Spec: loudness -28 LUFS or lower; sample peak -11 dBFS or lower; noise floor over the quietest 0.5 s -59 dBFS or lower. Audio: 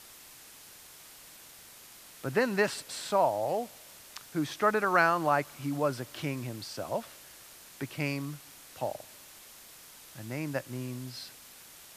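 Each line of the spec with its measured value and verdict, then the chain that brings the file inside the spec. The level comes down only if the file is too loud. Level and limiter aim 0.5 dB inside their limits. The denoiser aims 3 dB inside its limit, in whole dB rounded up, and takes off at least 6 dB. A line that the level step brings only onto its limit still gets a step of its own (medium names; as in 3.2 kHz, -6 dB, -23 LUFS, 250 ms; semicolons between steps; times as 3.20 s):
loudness -31.5 LUFS: pass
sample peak -9.5 dBFS: fail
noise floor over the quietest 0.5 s -52 dBFS: fail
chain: noise reduction 10 dB, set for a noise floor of -52 dBFS; peak limiter -11.5 dBFS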